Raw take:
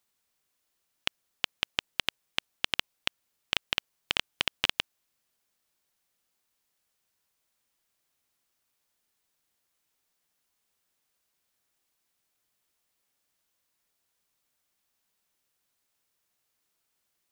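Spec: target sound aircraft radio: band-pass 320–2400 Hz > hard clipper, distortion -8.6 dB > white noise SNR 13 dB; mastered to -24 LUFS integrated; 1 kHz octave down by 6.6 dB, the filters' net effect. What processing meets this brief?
band-pass 320–2400 Hz; peaking EQ 1 kHz -8.5 dB; hard clipper -20.5 dBFS; white noise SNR 13 dB; trim +18 dB

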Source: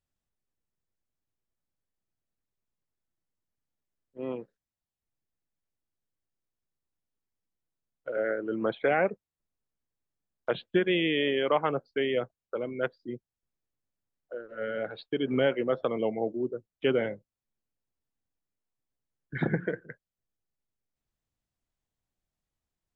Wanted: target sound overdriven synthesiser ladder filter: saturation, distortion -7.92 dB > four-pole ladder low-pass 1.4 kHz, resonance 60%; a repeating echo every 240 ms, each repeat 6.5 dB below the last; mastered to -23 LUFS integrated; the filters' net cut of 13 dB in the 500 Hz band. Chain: peaking EQ 500 Hz -4.5 dB; feedback delay 240 ms, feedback 47%, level -6.5 dB; saturation -29.5 dBFS; four-pole ladder low-pass 1.4 kHz, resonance 60%; trim +23 dB

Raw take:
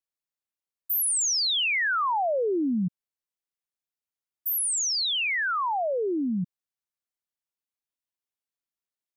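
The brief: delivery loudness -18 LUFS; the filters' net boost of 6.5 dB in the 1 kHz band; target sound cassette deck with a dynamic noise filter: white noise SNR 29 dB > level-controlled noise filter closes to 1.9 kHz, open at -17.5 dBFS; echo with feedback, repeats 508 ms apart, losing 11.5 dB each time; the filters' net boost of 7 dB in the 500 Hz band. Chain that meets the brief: peaking EQ 500 Hz +7 dB; peaking EQ 1 kHz +6 dB; feedback delay 508 ms, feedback 27%, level -11.5 dB; white noise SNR 29 dB; level-controlled noise filter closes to 1.9 kHz, open at -17.5 dBFS; trim +4.5 dB

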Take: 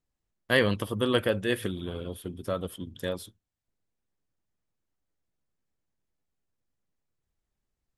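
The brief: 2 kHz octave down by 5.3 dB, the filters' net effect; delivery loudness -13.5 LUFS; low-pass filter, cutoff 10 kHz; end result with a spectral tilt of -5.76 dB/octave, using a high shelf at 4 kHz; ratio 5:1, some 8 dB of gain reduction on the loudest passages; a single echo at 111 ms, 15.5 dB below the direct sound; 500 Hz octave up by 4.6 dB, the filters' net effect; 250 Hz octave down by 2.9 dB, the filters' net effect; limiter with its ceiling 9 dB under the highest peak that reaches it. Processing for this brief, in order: low-pass 10 kHz; peaking EQ 250 Hz -6.5 dB; peaking EQ 500 Hz +7 dB; peaking EQ 2 kHz -5 dB; treble shelf 4 kHz -9 dB; compression 5:1, threshold -25 dBFS; peak limiter -23.5 dBFS; delay 111 ms -15.5 dB; trim +22 dB

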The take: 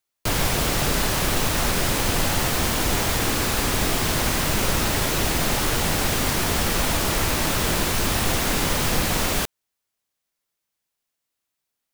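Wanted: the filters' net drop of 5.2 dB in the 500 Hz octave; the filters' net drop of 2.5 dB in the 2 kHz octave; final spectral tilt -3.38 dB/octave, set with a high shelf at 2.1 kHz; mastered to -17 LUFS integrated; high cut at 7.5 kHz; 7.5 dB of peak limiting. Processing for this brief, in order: low-pass 7.5 kHz; peaking EQ 500 Hz -7 dB; peaking EQ 2 kHz -6.5 dB; treble shelf 2.1 kHz +6 dB; trim +8.5 dB; peak limiter -8 dBFS

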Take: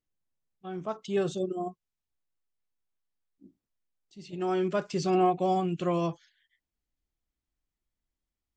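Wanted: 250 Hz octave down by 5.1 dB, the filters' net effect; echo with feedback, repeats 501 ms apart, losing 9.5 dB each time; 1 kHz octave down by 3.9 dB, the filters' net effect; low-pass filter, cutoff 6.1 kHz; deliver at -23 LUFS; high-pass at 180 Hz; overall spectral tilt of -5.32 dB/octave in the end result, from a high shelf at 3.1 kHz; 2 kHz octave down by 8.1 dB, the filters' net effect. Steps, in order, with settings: high-pass 180 Hz; low-pass 6.1 kHz; peaking EQ 250 Hz -7 dB; peaking EQ 1 kHz -3.5 dB; peaking EQ 2 kHz -7.5 dB; treble shelf 3.1 kHz -8 dB; feedback delay 501 ms, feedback 33%, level -9.5 dB; trim +11 dB

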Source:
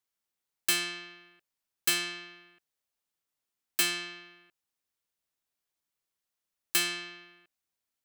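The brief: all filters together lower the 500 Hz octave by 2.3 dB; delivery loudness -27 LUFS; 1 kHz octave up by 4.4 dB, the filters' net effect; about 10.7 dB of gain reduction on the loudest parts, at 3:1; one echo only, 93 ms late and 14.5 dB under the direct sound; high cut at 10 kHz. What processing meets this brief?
low-pass 10 kHz; peaking EQ 500 Hz -7 dB; peaking EQ 1 kHz +7.5 dB; compression 3:1, threshold -38 dBFS; delay 93 ms -14.5 dB; trim +13.5 dB

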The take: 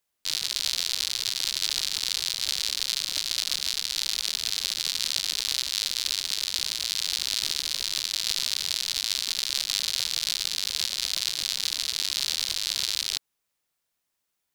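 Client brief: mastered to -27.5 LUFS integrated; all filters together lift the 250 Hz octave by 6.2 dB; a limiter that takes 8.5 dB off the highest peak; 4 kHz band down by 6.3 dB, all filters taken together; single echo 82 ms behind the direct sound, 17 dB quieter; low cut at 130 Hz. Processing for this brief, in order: high-pass 130 Hz; peaking EQ 250 Hz +8.5 dB; peaking EQ 4 kHz -7.5 dB; peak limiter -17 dBFS; delay 82 ms -17 dB; trim +8.5 dB

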